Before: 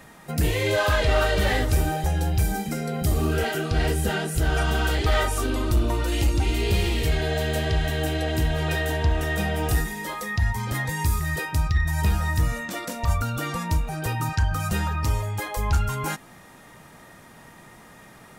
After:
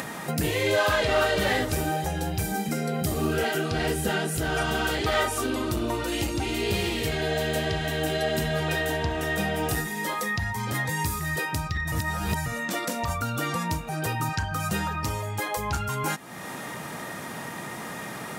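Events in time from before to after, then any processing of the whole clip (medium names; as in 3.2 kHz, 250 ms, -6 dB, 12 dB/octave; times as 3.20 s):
8.09–8.60 s: comb 4.9 ms
11.92–12.46 s: reverse
whole clip: upward compressor, threshold -23 dBFS; high-pass 130 Hz 12 dB/octave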